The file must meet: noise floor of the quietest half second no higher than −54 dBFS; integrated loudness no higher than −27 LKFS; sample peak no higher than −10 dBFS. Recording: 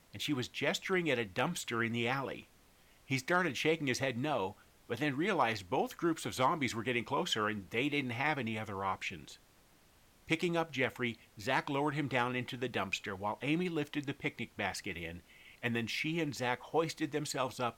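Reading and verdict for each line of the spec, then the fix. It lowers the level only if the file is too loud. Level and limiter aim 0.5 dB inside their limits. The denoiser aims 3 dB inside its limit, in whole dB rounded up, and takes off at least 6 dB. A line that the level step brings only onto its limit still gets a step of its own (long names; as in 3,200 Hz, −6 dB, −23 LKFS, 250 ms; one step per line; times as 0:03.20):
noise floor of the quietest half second −65 dBFS: in spec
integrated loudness −35.0 LKFS: in spec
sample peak −17.5 dBFS: in spec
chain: no processing needed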